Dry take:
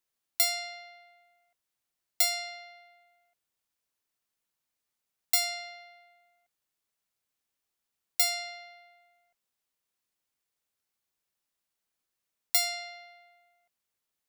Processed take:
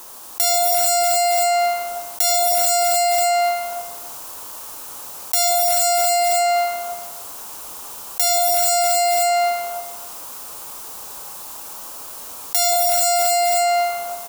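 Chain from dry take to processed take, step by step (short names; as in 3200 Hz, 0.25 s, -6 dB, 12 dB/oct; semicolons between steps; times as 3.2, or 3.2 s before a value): graphic EQ 125/1000/2000/4000 Hz -8/+9/-12/-5 dB; non-linear reverb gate 0.49 s rising, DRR -2.5 dB; in parallel at -7 dB: wrapped overs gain 19 dB; on the sum: low shelf 380 Hz -3.5 dB; on a send: feedback echo 0.271 s, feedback 18%, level -14.5 dB; on the sum: fast leveller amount 100%; gain +4 dB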